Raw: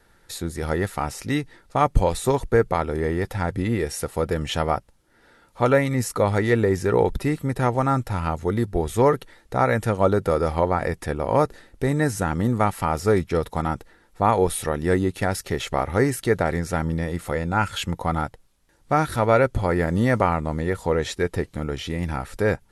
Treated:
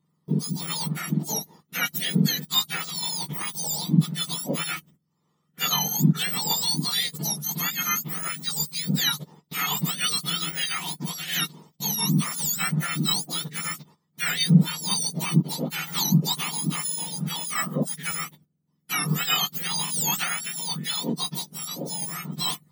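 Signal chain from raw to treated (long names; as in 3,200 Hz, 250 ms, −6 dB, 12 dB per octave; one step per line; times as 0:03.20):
frequency axis turned over on the octave scale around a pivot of 1,300 Hz
noise gate −51 dBFS, range −15 dB
bass and treble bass +11 dB, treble +6 dB
level −4 dB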